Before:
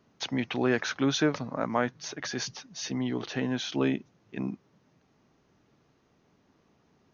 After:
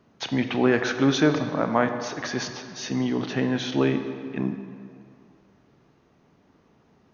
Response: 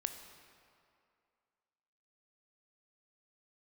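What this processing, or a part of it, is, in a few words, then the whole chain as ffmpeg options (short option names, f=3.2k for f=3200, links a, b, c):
swimming-pool hall: -filter_complex "[1:a]atrim=start_sample=2205[a];[0:a][a]afir=irnorm=-1:irlink=0,highshelf=f=3.6k:g=-7,volume=6.5dB"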